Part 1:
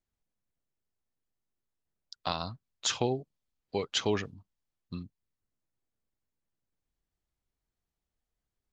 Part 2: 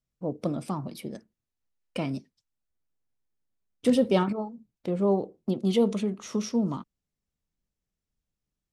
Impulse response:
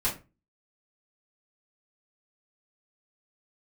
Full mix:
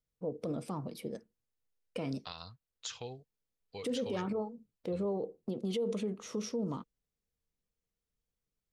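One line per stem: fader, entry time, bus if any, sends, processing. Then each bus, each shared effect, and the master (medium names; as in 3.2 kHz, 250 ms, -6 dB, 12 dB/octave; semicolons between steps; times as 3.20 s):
-6.5 dB, 0.00 s, no send, peaking EQ 370 Hz -13.5 dB 2.5 oct; compression, threshold -31 dBFS, peak gain reduction 6 dB
-5.5 dB, 0.00 s, no send, peak limiter -21.5 dBFS, peak gain reduction 10.5 dB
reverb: none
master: peaking EQ 470 Hz +11 dB 0.27 oct; peak limiter -27 dBFS, peak gain reduction 8.5 dB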